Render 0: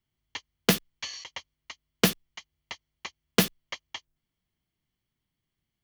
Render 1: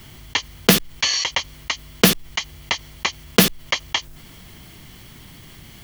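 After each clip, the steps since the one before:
envelope flattener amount 50%
level +7.5 dB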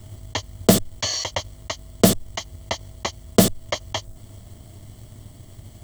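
thirty-one-band graphic EQ 100 Hz +11 dB, 160 Hz −9 dB, 630 Hz +12 dB, 1,600 Hz −5 dB, 2,500 Hz −10 dB, 8,000 Hz +12 dB
leveller curve on the samples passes 1
low-shelf EQ 450 Hz +11 dB
level −9 dB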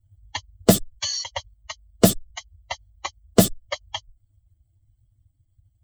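spectral dynamics exaggerated over time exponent 2
level +1.5 dB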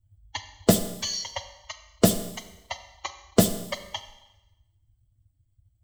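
four-comb reverb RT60 0.99 s, combs from 30 ms, DRR 9.5 dB
level −3.5 dB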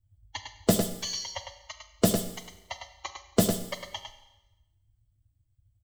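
single-tap delay 104 ms −6.5 dB
level −4 dB

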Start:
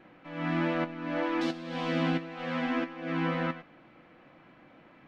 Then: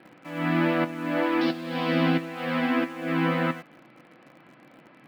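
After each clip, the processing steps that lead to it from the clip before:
Chebyshev band-pass filter 120–5,000 Hz, order 4
in parallel at −9.5 dB: bit-depth reduction 8 bits, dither none
on the sum: level +3.5 dB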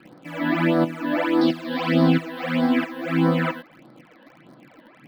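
all-pass phaser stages 12, 1.6 Hz, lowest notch 120–2,600 Hz
level +5.5 dB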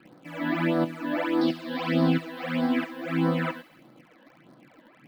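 delay with a high-pass on its return 69 ms, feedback 66%, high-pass 4,700 Hz, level −8 dB
level −5 dB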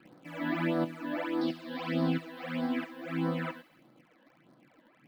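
speech leveller within 5 dB 2 s
level −7 dB

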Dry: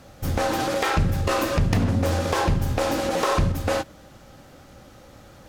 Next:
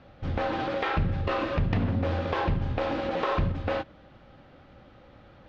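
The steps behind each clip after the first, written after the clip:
low-pass filter 3,600 Hz 24 dB per octave
level −5 dB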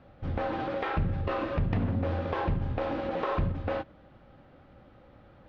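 high-shelf EQ 2,700 Hz −9 dB
level −2 dB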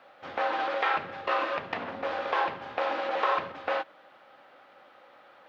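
high-pass filter 770 Hz 12 dB per octave
level +8 dB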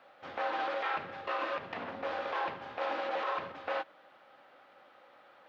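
brickwall limiter −20.5 dBFS, peak gain reduction 8 dB
level −4 dB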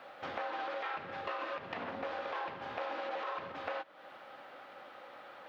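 downward compressor 4 to 1, threshold −46 dBFS, peak gain reduction 13.5 dB
level +7.5 dB

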